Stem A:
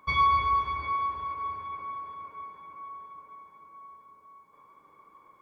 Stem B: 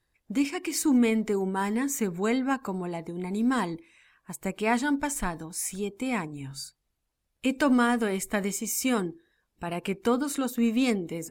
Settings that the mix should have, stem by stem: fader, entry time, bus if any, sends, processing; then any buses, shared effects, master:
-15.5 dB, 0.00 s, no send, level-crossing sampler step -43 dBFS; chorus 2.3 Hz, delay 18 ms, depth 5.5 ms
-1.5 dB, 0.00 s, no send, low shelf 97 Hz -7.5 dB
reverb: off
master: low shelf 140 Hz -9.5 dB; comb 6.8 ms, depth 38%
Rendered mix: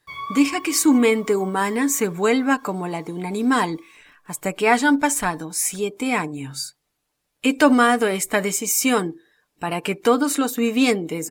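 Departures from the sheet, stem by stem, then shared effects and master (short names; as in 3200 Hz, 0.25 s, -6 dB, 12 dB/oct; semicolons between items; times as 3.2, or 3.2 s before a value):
stem A -15.5 dB -> -5.0 dB; stem B -1.5 dB -> +9.0 dB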